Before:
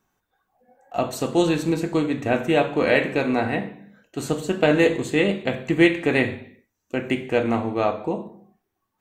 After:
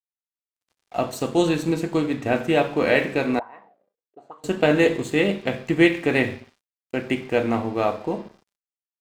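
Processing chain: mains buzz 400 Hz, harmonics 13, -56 dBFS -3 dB/octave; crossover distortion -45 dBFS; 3.39–4.44 s: auto-wah 430–1100 Hz, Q 8.8, up, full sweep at -20.5 dBFS

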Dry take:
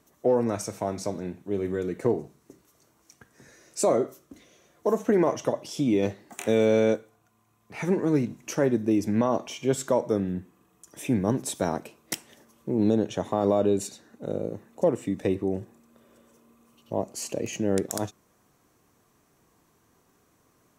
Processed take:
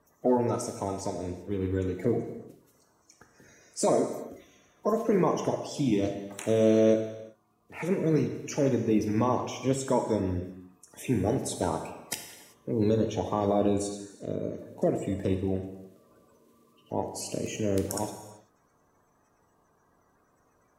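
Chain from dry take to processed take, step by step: coarse spectral quantiser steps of 30 dB; gated-style reverb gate 410 ms falling, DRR 5 dB; trim -2.5 dB

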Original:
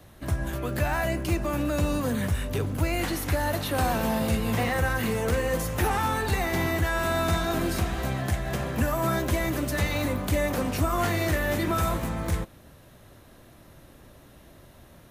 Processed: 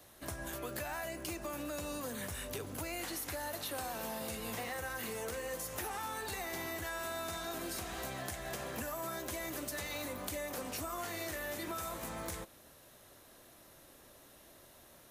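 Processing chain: tone controls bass -11 dB, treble +7 dB; compression, threshold -32 dBFS, peak gain reduction 10 dB; trim -5.5 dB

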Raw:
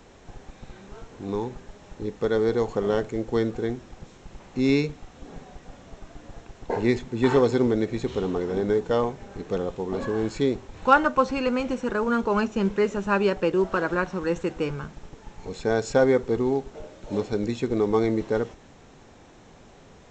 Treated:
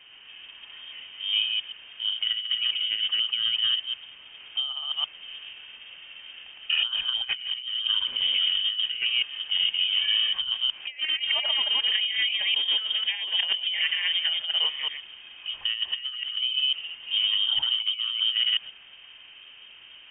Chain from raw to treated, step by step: chunks repeated in reverse 123 ms, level -1.5 dB; compressor with a negative ratio -24 dBFS, ratio -0.5; elliptic high-pass 190 Hz; distance through air 320 m; frequency inversion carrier 3.4 kHz

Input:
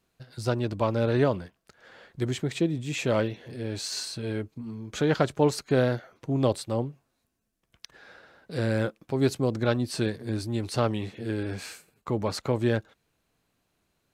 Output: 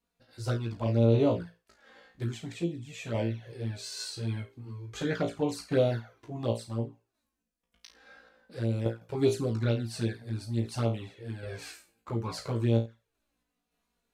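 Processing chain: flutter echo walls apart 3 m, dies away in 0.29 s; touch-sensitive flanger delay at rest 4.2 ms, full sweep at -17 dBFS; random-step tremolo; trim -2.5 dB

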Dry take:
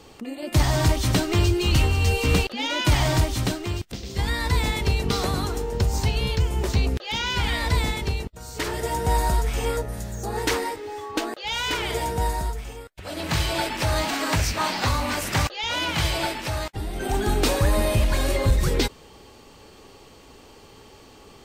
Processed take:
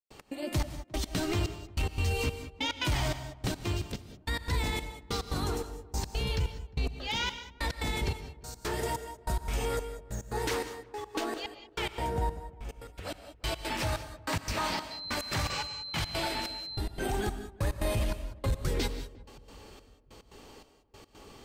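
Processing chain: 11.93–12.69 s: treble shelf 2.2 kHz -11 dB; 15.53–15.78 s: spectral replace 1–8.5 kHz; in parallel at -11 dB: wavefolder -15 dBFS; on the sum: trance gate ".x.xxx.." 144 bpm -60 dB; 14.90–16.79 s: whistle 4.1 kHz -34 dBFS; peak limiter -17 dBFS, peak gain reduction 7 dB; on a send: filtered feedback delay 353 ms, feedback 57%, low-pass 890 Hz, level -21 dB; on the sum: gated-style reverb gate 220 ms rising, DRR 10.5 dB; trim -5.5 dB

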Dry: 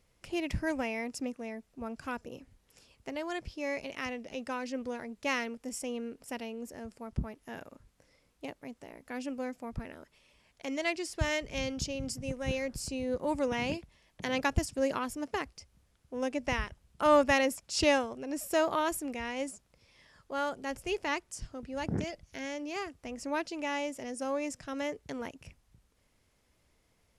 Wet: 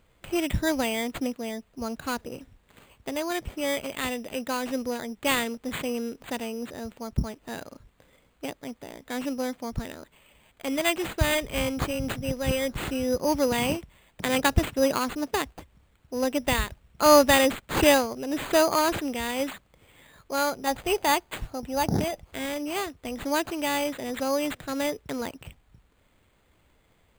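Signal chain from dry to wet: 20.67–22.23 s: peaking EQ 790 Hz +9 dB 0.5 oct; careless resampling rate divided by 8×, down none, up hold; trim +7 dB

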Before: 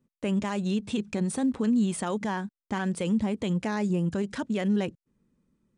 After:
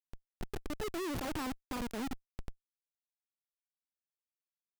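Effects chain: gliding tape speed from 175% -> 66%; Doppler pass-by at 1.39 s, 14 m/s, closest 3.9 m; Schmitt trigger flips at -31.5 dBFS

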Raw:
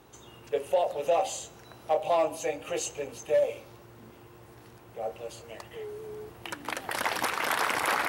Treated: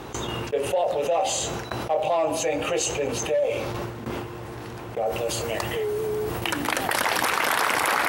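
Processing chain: gate with hold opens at -39 dBFS; treble shelf 8.6 kHz -10 dB, from 5.06 s +2.5 dB; level flattener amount 70%

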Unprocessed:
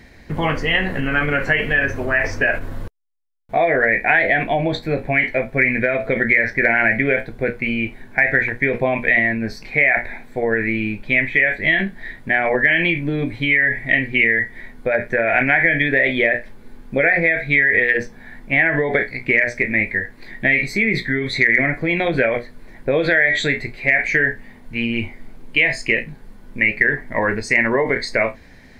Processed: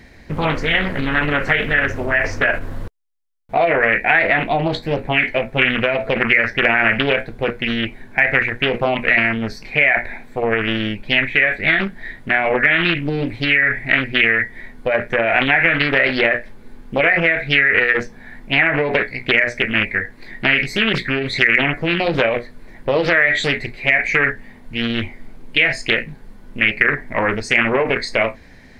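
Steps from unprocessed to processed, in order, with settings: loudspeaker Doppler distortion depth 0.48 ms; trim +1 dB

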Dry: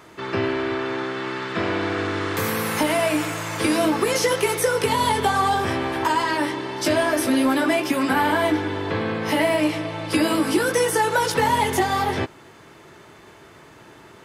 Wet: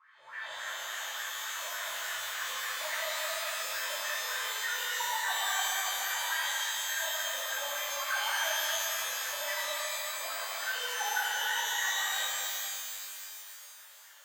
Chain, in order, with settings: amplifier tone stack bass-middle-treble 10-0-10; wah-wah 3.5 Hz 540–1900 Hz, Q 14; pitch-shifted reverb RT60 2.6 s, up +12 st, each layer -2 dB, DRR -8.5 dB

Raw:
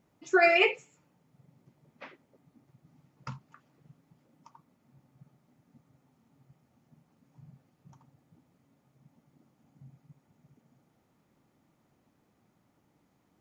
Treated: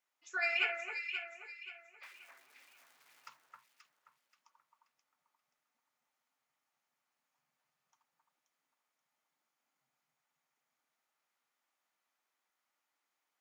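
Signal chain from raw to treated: 2.03–3.29 s: jump at every zero crossing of -46.5 dBFS; high-pass 1.4 kHz 12 dB/octave; echo whose repeats swap between lows and highs 265 ms, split 1.8 kHz, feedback 58%, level -2 dB; trim -7 dB

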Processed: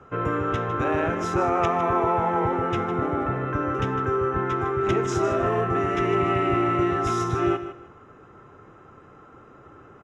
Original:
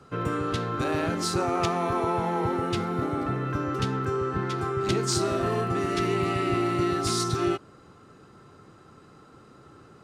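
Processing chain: boxcar filter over 10 samples; peaking EQ 180 Hz -7.5 dB 1.7 oct; on a send: feedback delay 155 ms, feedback 23%, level -12 dB; on the sum: trim +6 dB

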